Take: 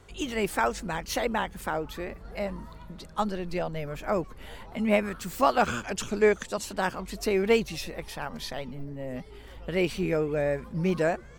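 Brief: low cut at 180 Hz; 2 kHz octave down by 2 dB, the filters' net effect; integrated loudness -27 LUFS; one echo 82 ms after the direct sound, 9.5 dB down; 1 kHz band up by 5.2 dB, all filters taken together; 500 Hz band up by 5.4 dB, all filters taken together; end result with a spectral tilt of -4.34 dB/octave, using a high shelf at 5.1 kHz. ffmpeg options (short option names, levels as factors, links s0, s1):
-af "highpass=180,equalizer=f=500:t=o:g=5.5,equalizer=f=1000:t=o:g=6,equalizer=f=2000:t=o:g=-4.5,highshelf=f=5100:g=-5,aecho=1:1:82:0.335,volume=0.75"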